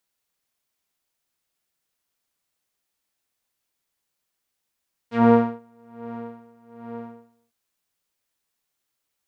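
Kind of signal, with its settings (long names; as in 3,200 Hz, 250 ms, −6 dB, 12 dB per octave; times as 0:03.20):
subtractive patch with tremolo A#3, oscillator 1 saw, interval +12 semitones, sub −18 dB, filter lowpass, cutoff 820 Hz, Q 0.98, filter envelope 2.5 octaves, filter decay 0.09 s, filter sustain 10%, attack 108 ms, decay 0.38 s, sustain −21 dB, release 0.67 s, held 1.74 s, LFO 1.2 Hz, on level 21 dB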